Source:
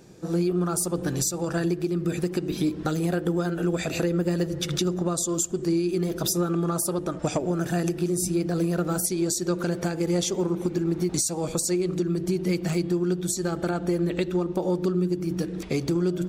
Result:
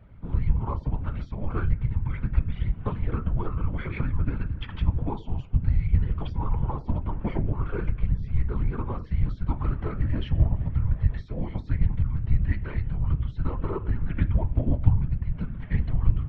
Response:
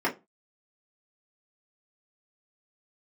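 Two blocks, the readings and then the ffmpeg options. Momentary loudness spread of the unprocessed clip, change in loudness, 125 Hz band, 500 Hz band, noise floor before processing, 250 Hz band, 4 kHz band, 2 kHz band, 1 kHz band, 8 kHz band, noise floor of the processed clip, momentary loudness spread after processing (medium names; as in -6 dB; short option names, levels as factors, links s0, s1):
3 LU, -2.5 dB, +3.5 dB, -13.5 dB, -35 dBFS, -9.5 dB, -16.0 dB, -6.0 dB, -3.5 dB, under -40 dB, -41 dBFS, 6 LU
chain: -filter_complex "[0:a]asplit=2[s0][s1];[1:a]atrim=start_sample=2205[s2];[s1][s2]afir=irnorm=-1:irlink=0,volume=0.2[s3];[s0][s3]amix=inputs=2:normalize=0,highpass=f=260:t=q:w=0.5412,highpass=f=260:t=q:w=1.307,lowpass=f=3100:t=q:w=0.5176,lowpass=f=3100:t=q:w=0.7071,lowpass=f=3100:t=q:w=1.932,afreqshift=-300,afftfilt=real='hypot(re,im)*cos(2*PI*random(0))':imag='hypot(re,im)*sin(2*PI*random(1))':win_size=512:overlap=0.75,lowshelf=f=110:g=11"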